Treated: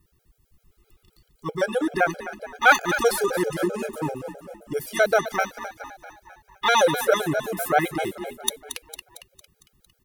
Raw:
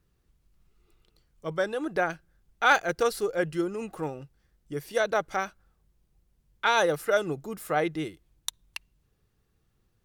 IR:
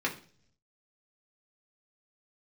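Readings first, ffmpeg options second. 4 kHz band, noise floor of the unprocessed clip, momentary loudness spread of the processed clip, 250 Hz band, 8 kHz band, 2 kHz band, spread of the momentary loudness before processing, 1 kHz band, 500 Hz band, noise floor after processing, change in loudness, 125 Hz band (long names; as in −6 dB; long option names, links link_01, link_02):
+6.0 dB, −72 dBFS, 18 LU, +5.0 dB, +9.0 dB, +6.0 dB, 15 LU, +5.0 dB, +4.5 dB, −69 dBFS, +5.0 dB, +4.0 dB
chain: -filter_complex "[0:a]highshelf=frequency=10000:gain=11.5,asplit=7[link_01][link_02][link_03][link_04][link_05][link_06][link_07];[link_02]adelay=227,afreqshift=38,volume=-10.5dB[link_08];[link_03]adelay=454,afreqshift=76,volume=-15.9dB[link_09];[link_04]adelay=681,afreqshift=114,volume=-21.2dB[link_10];[link_05]adelay=908,afreqshift=152,volume=-26.6dB[link_11];[link_06]adelay=1135,afreqshift=190,volume=-31.9dB[link_12];[link_07]adelay=1362,afreqshift=228,volume=-37.3dB[link_13];[link_01][link_08][link_09][link_10][link_11][link_12][link_13]amix=inputs=7:normalize=0,asplit=2[link_14][link_15];[1:a]atrim=start_sample=2205[link_16];[link_15][link_16]afir=irnorm=-1:irlink=0,volume=-27dB[link_17];[link_14][link_17]amix=inputs=2:normalize=0,afftfilt=real='re*gt(sin(2*PI*7.7*pts/sr)*(1-2*mod(floor(b*sr/1024/420),2)),0)':imag='im*gt(sin(2*PI*7.7*pts/sr)*(1-2*mod(floor(b*sr/1024/420),2)),0)':win_size=1024:overlap=0.75,volume=7.5dB"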